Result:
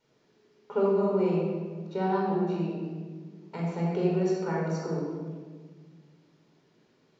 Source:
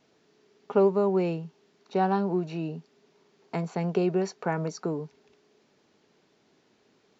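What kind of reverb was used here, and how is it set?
rectangular room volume 1,700 cubic metres, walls mixed, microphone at 4.6 metres
level −9.5 dB

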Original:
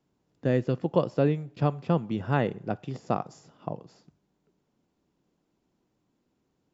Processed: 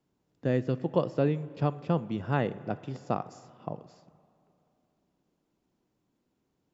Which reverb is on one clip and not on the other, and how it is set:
spring reverb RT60 2.8 s, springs 33/39/43 ms, chirp 45 ms, DRR 17.5 dB
level −2.5 dB

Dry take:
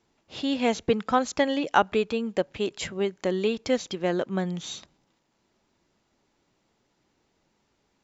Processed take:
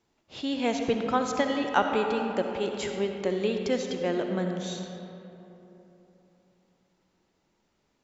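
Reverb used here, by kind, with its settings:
comb and all-pass reverb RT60 3.3 s, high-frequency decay 0.45×, pre-delay 25 ms, DRR 3.5 dB
level −3.5 dB

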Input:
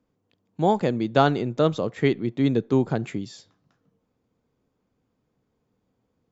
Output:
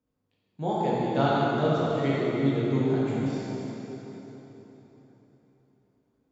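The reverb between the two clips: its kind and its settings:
dense smooth reverb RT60 4 s, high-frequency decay 0.8×, DRR −8.5 dB
level −12 dB

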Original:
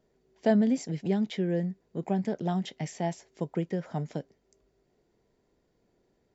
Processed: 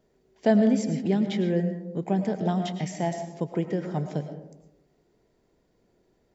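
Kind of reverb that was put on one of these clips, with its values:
comb and all-pass reverb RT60 0.91 s, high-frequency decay 0.3×, pre-delay 70 ms, DRR 7.5 dB
level +3 dB

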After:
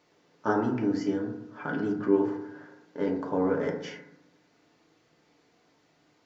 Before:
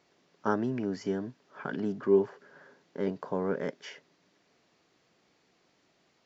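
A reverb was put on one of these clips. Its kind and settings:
feedback delay network reverb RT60 0.82 s, low-frequency decay 1.25×, high-frequency decay 0.3×, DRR 0 dB

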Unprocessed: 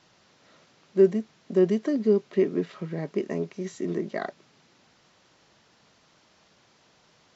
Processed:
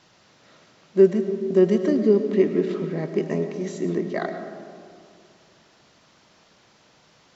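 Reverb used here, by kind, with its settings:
comb and all-pass reverb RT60 2.3 s, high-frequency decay 0.3×, pre-delay 65 ms, DRR 7.5 dB
level +3.5 dB

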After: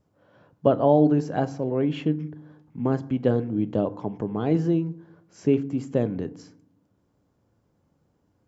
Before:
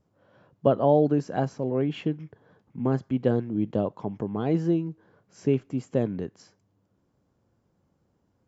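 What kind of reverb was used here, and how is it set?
feedback delay network reverb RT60 0.69 s, low-frequency decay 1.5×, high-frequency decay 0.4×, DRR 13.5 dB
level +1.5 dB

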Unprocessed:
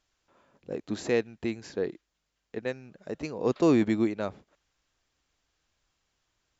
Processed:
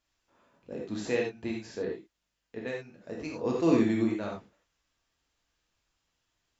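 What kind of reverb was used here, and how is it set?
reverb whose tail is shaped and stops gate 120 ms flat, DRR −2.5 dB
level −6 dB

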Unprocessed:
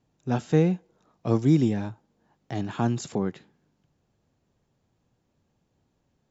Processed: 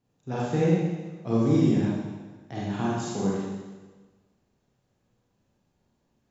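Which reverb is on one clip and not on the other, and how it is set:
four-comb reverb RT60 1.3 s, combs from 31 ms, DRR −6.5 dB
level −6.5 dB

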